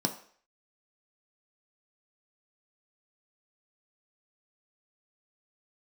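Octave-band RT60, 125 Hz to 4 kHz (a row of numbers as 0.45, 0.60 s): 0.30, 0.45, 0.55, 0.50, 0.55, 0.55 s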